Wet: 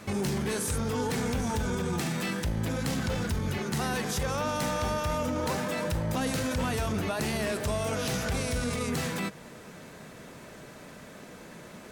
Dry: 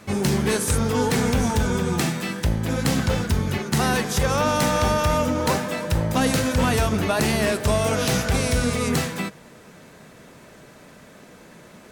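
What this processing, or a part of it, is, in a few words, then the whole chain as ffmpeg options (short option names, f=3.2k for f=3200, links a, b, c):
stacked limiters: -af "alimiter=limit=-19dB:level=0:latency=1:release=214,alimiter=limit=-22.5dB:level=0:latency=1:release=11"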